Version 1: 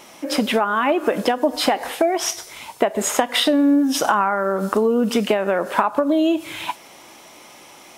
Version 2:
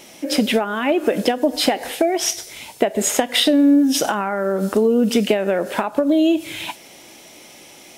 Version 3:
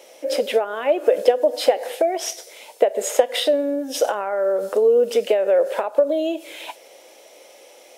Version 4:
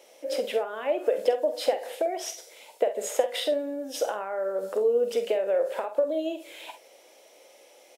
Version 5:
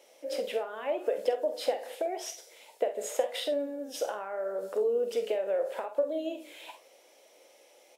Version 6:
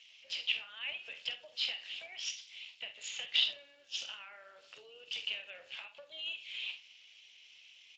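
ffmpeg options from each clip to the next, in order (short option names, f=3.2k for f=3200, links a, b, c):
-af "equalizer=f=1.1k:w=1.5:g=-11.5,volume=3dB"
-af "highpass=f=510:t=q:w=4.9,volume=-7dB"
-af "aecho=1:1:47|66:0.316|0.15,volume=-8dB"
-af "flanger=delay=6.9:depth=9.9:regen=76:speed=0.84:shape=sinusoidal"
-af "highpass=f=2.8k:t=q:w=4.4" -ar 16000 -c:a libspeex -b:a 21k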